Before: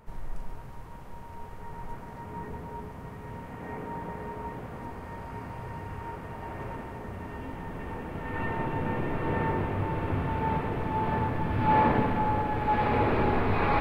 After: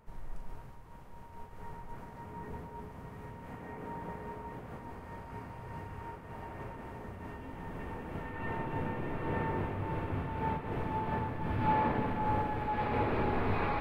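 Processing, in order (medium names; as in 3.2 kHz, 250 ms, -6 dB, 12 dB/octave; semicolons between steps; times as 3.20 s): random flutter of the level, depth 60%; trim -3 dB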